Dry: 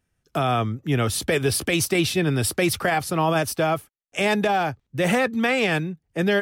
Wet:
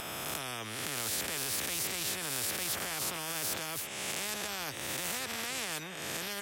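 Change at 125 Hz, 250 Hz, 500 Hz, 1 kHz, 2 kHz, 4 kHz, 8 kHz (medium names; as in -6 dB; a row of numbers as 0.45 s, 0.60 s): -22.0 dB, -21.0 dB, -20.0 dB, -16.0 dB, -12.5 dB, -6.0 dB, -3.5 dB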